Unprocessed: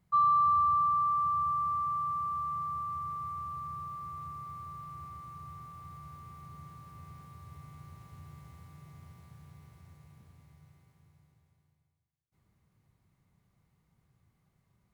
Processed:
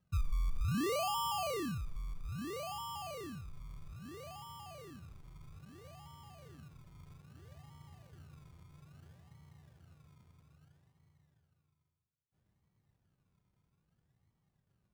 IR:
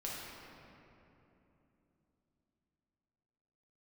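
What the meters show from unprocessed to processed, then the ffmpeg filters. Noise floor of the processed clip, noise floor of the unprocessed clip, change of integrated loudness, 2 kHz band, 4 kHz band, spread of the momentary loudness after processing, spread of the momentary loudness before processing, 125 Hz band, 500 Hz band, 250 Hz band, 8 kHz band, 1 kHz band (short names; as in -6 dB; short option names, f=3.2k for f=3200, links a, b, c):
-81 dBFS, -75 dBFS, -9.5 dB, +12.0 dB, +18.0 dB, 23 LU, 24 LU, +3.0 dB, +21.0 dB, +9.5 dB, n/a, -14.5 dB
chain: -af "lowpass=1.6k,acrusher=samples=30:mix=1:aa=0.000001:lfo=1:lforange=18:lforate=0.61,volume=-5.5dB"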